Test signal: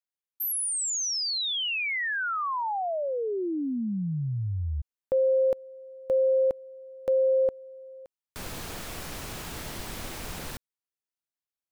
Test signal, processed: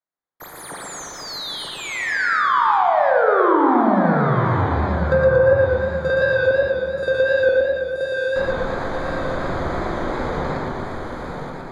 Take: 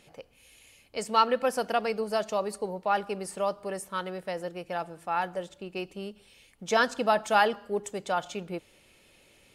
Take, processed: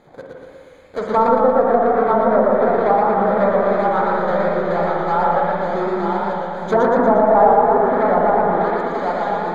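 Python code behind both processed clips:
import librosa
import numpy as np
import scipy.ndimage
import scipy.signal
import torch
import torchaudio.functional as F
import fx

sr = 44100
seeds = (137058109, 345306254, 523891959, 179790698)

p1 = fx.halfwave_hold(x, sr)
p2 = np.convolve(p1, np.full(16, 1.0 / 16))[:len(p1)]
p3 = fx.low_shelf(p2, sr, hz=410.0, db=-8.0)
p4 = fx.hum_notches(p3, sr, base_hz=50, count=2)
p5 = p4 + fx.echo_feedback(p4, sr, ms=929, feedback_pct=40, wet_db=-5.5, dry=0)
p6 = fx.rev_spring(p5, sr, rt60_s=1.8, pass_ms=(41, 52), chirp_ms=80, drr_db=0.5)
p7 = fx.env_lowpass_down(p6, sr, base_hz=880.0, full_db=-20.5)
p8 = fx.echo_warbled(p7, sr, ms=117, feedback_pct=59, rate_hz=2.8, cents=86, wet_db=-3)
y = p8 * librosa.db_to_amplitude(9.0)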